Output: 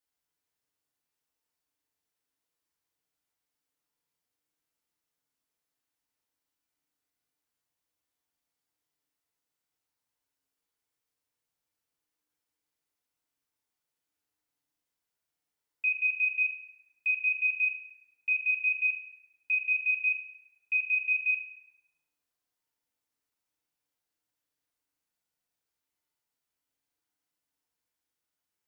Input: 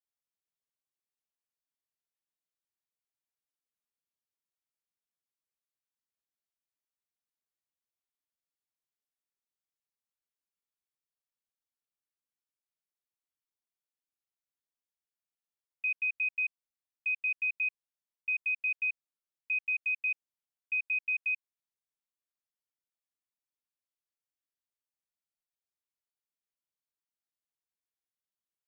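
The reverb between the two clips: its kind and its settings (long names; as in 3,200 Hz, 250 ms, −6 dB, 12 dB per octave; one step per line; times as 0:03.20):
feedback delay network reverb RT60 1.4 s, low-frequency decay 1×, high-frequency decay 0.45×, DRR −2.5 dB
level +4 dB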